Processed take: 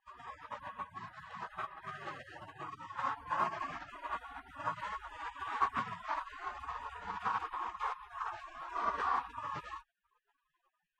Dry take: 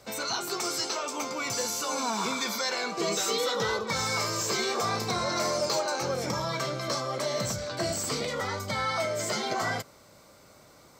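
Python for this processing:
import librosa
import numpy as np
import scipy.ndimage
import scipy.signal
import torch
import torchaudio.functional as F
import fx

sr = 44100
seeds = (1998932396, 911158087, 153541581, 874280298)

y = fx.spec_gate(x, sr, threshold_db=-30, keep='weak')
y = fx.lowpass_res(y, sr, hz=1100.0, q=6.4)
y = F.gain(torch.from_numpy(y), 14.5).numpy()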